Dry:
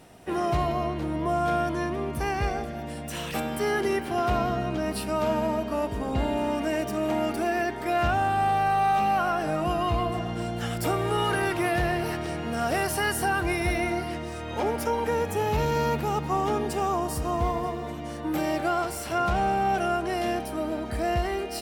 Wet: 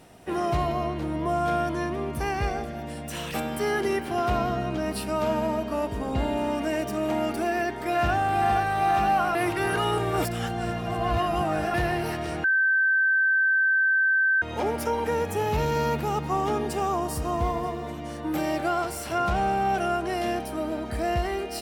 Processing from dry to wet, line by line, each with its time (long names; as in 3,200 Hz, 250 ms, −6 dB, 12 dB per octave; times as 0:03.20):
0:07.45–0:08.34: delay throw 470 ms, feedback 85%, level −7 dB
0:09.35–0:11.74: reverse
0:12.44–0:14.42: beep over 1,550 Hz −18.5 dBFS